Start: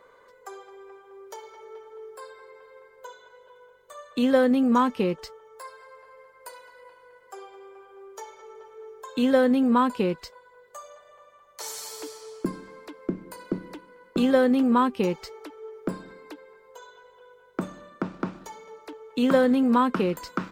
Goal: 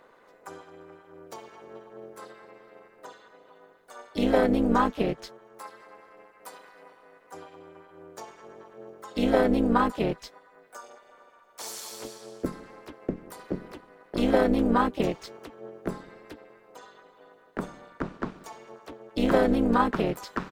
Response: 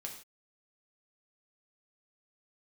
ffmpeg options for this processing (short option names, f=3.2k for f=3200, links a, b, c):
-filter_complex "[0:a]asplit=3[a][b][c];[b]asetrate=35002,aresample=44100,atempo=1.25992,volume=-6dB[d];[c]asetrate=55563,aresample=44100,atempo=0.793701,volume=-7dB[e];[a][d][e]amix=inputs=3:normalize=0,equalizer=f=83:w=1.1:g=-7,tremolo=f=220:d=0.75"